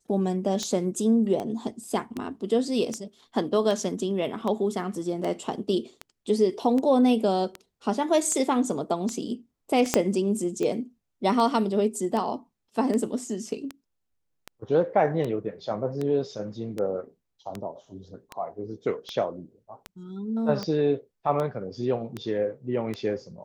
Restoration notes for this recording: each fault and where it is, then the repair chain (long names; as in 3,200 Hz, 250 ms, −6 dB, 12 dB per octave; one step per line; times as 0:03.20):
scratch tick 78 rpm −18 dBFS
0:09.94: click −5 dBFS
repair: click removal